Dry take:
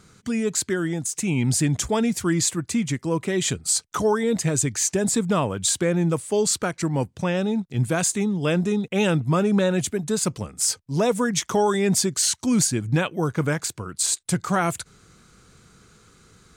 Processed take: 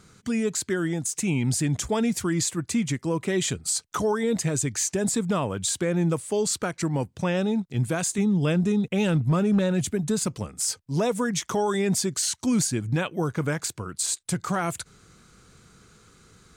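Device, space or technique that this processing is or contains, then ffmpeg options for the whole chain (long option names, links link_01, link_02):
clipper into limiter: -filter_complex "[0:a]asettb=1/sr,asplit=3[link_01][link_02][link_03];[link_01]atrim=end=8.184[link_04];[link_02]atrim=start=8.18:end=10.27,asetpts=PTS-STARTPTS,afade=type=in:duration=0.004:curve=qsin,afade=type=out:start_time=2.086:duration=0.004:curve=qsin,bass=frequency=250:gain=6,treble=frequency=4000:gain=0[link_05];[link_03]atrim=start=10.266[link_06];[link_04][link_05]acrossfade=duration=0.004:curve1=hsin:curve2=qsin[link_07];[link_07][link_06]acrossfade=duration=0.004:curve1=qsin:curve2=hsin,asoftclip=type=hard:threshold=-11dB,alimiter=limit=-15dB:level=0:latency=1:release=137,volume=-1dB"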